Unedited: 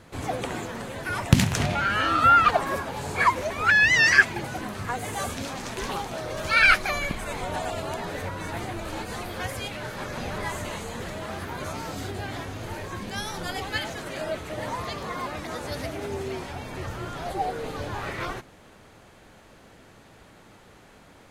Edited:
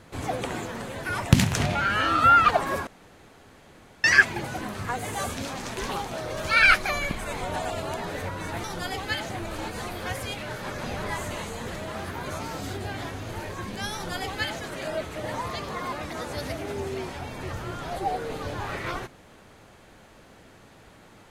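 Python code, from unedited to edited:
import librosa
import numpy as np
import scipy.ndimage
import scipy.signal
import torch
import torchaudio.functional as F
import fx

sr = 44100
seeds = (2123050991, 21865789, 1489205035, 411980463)

y = fx.edit(x, sr, fx.room_tone_fill(start_s=2.87, length_s=1.17),
    fx.duplicate(start_s=13.28, length_s=0.66, to_s=8.64), tone=tone)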